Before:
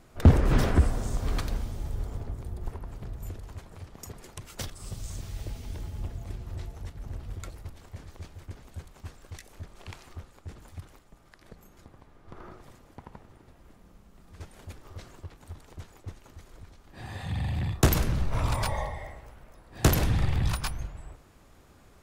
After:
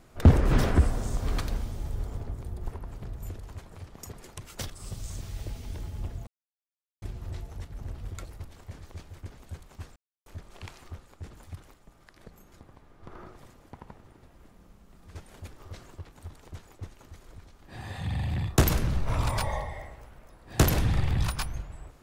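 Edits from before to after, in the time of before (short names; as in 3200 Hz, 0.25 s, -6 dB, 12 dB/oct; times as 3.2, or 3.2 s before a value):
6.27 insert silence 0.75 s
9.21–9.51 mute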